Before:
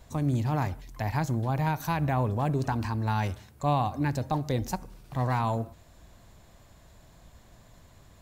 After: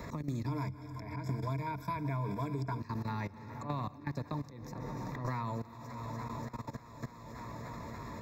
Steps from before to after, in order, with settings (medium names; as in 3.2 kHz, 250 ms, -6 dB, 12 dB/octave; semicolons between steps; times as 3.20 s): peaking EQ 890 Hz +14.5 dB 0.32 oct; static phaser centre 3 kHz, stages 6; comb of notches 1.5 kHz; plate-style reverb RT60 2.8 s, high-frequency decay 0.85×, pre-delay 110 ms, DRR 12 dB; slow attack 129 ms; multi-head delay 291 ms, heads first and second, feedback 74%, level -21 dB; level held to a coarse grid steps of 17 dB; 0.46–2.80 s: rippled EQ curve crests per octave 1.7, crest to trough 16 dB; three bands compressed up and down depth 100%; trim -3 dB